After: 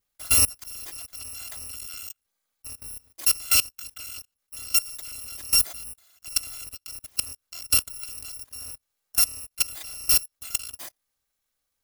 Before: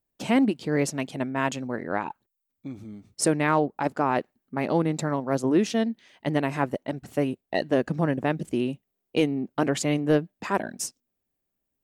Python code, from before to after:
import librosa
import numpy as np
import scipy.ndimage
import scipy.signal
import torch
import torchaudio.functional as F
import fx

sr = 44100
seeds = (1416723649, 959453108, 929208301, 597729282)

y = fx.bit_reversed(x, sr, seeds[0], block=256)
y = fx.level_steps(y, sr, step_db=21)
y = y * 10.0 ** (4.0 / 20.0)